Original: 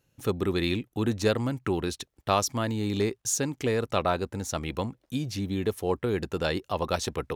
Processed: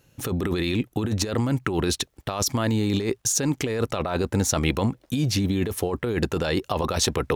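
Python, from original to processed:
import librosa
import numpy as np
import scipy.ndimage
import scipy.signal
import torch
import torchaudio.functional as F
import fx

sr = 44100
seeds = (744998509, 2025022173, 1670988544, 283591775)

y = fx.over_compress(x, sr, threshold_db=-31.0, ratio=-1.0)
y = F.gain(torch.from_numpy(y), 7.5).numpy()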